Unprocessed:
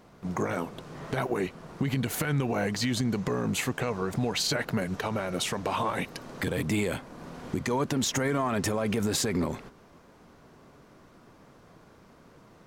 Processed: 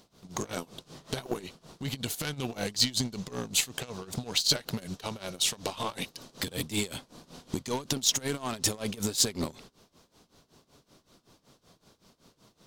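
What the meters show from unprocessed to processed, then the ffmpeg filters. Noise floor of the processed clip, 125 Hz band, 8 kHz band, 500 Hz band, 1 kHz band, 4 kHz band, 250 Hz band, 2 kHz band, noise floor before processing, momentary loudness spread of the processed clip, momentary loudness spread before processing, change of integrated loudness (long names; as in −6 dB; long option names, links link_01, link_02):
−72 dBFS, −6.5 dB, +4.5 dB, −7.0 dB, −7.0 dB, +5.0 dB, −6.5 dB, −5.5 dB, −56 dBFS, 13 LU, 8 LU, −1.5 dB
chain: -af "aeval=exprs='0.133*(cos(1*acos(clip(val(0)/0.133,-1,1)))-cos(1*PI/2))+0.0168*(cos(3*acos(clip(val(0)/0.133,-1,1)))-cos(3*PI/2))+0.00596*(cos(4*acos(clip(val(0)/0.133,-1,1)))-cos(4*PI/2))':channel_layout=same,tremolo=f=5.3:d=0.88,highshelf=frequency=2700:width_type=q:width=1.5:gain=10"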